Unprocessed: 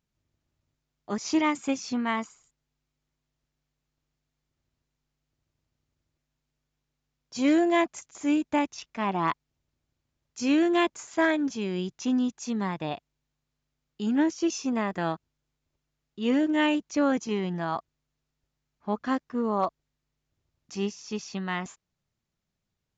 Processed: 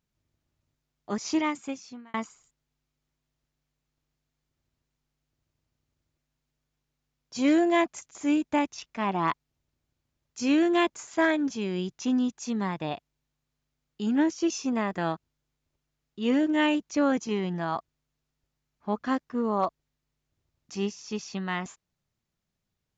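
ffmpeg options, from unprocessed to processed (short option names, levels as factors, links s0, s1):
-filter_complex "[0:a]asplit=2[s0][s1];[s0]atrim=end=2.14,asetpts=PTS-STARTPTS,afade=t=out:st=1.19:d=0.95[s2];[s1]atrim=start=2.14,asetpts=PTS-STARTPTS,afade=t=in:d=0.004:c=hsin[s3];[s2][s3]concat=n=2:v=0:a=1"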